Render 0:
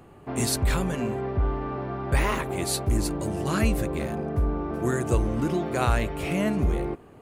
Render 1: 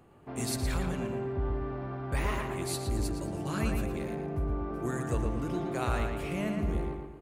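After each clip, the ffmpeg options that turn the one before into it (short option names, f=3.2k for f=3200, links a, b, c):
-filter_complex "[0:a]asplit=2[a][b];[b]adelay=115,lowpass=f=4k:p=1,volume=-4dB,asplit=2[c][d];[d]adelay=115,lowpass=f=4k:p=1,volume=0.47,asplit=2[e][f];[f]adelay=115,lowpass=f=4k:p=1,volume=0.47,asplit=2[g][h];[h]adelay=115,lowpass=f=4k:p=1,volume=0.47,asplit=2[i][j];[j]adelay=115,lowpass=f=4k:p=1,volume=0.47,asplit=2[k][l];[l]adelay=115,lowpass=f=4k:p=1,volume=0.47[m];[a][c][e][g][i][k][m]amix=inputs=7:normalize=0,volume=-8.5dB"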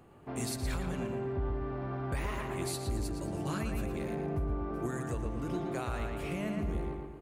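-af "alimiter=level_in=2dB:limit=-24dB:level=0:latency=1:release=476,volume=-2dB,volume=1dB"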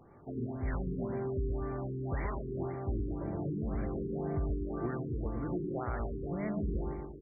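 -af "afftfilt=real='re*lt(b*sr/1024,450*pow(2400/450,0.5+0.5*sin(2*PI*1.9*pts/sr)))':imag='im*lt(b*sr/1024,450*pow(2400/450,0.5+0.5*sin(2*PI*1.9*pts/sr)))':win_size=1024:overlap=0.75"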